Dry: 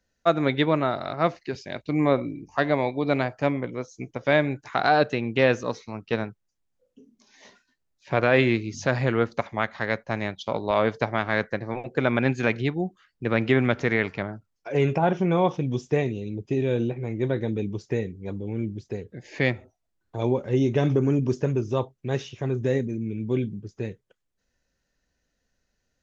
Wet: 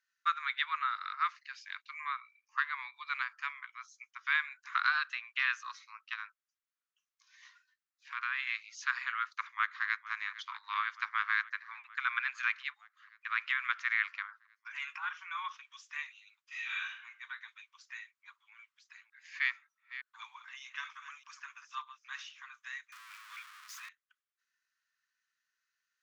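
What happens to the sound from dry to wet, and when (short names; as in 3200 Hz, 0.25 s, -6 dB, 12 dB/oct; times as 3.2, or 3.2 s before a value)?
2.01–2.94 high shelf 4200 Hz -7.5 dB
6.13–8.47 compressor 2.5:1, threshold -23 dBFS
9.25–10.03 echo throw 0.46 s, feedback 80%, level -16.5 dB
16.45–16.89 reverb throw, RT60 0.8 s, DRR -9 dB
18.49–22.34 reverse delay 0.305 s, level -12.5 dB
22.92–23.89 zero-crossing step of -32.5 dBFS
whole clip: steep high-pass 1100 Hz 72 dB/oct; high shelf 2800 Hz -10.5 dB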